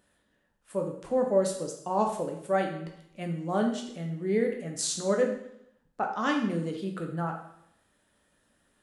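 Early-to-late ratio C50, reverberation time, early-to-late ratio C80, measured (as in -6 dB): 6.5 dB, 0.75 s, 9.5 dB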